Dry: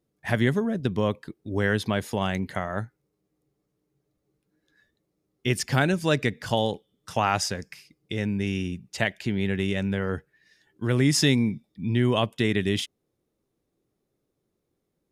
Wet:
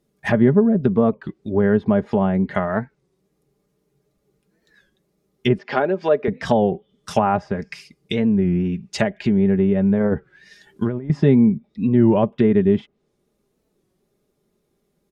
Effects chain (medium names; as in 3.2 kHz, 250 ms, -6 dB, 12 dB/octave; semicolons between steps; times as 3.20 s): 5.58–6.28 s: Chebyshev band-pass 430–4900 Hz, order 2; low-pass that closes with the level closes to 850 Hz, closed at -23 dBFS; comb 4.9 ms, depth 52%; 10.01–11.10 s: compressor with a negative ratio -28 dBFS, ratio -0.5; warped record 33 1/3 rpm, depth 160 cents; trim +7.5 dB